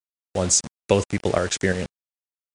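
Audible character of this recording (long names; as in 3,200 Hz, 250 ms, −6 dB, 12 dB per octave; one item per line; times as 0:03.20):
tremolo saw up 2.9 Hz, depth 45%
a quantiser's noise floor 6 bits, dither none
MP3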